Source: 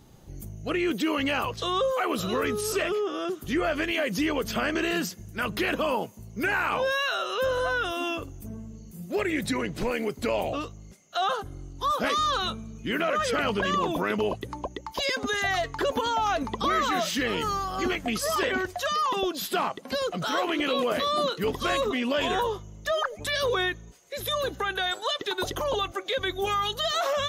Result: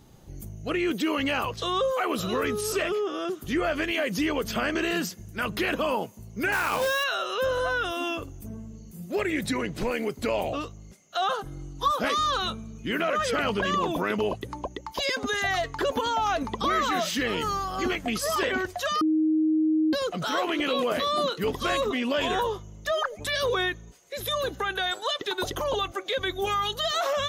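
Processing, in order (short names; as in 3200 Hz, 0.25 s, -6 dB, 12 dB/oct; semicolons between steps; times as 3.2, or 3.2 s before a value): 6.52–7.04 companded quantiser 4-bit; 11.43–11.88 comb 6.2 ms, depth 89%; 19.01–19.93 bleep 313 Hz -19.5 dBFS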